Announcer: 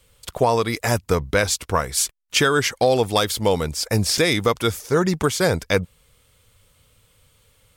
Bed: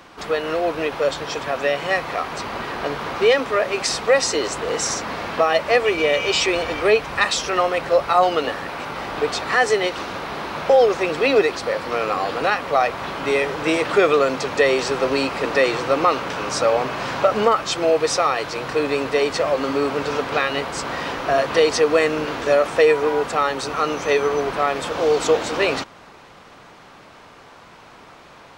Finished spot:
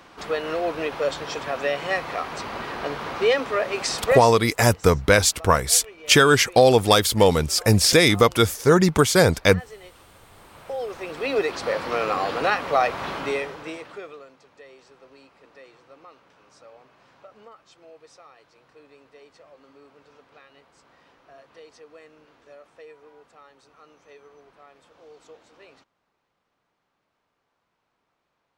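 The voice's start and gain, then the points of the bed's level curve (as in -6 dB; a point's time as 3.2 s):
3.75 s, +3.0 dB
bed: 4.15 s -4 dB
4.41 s -24.5 dB
10.28 s -24.5 dB
11.69 s -2 dB
13.15 s -2 dB
14.36 s -31 dB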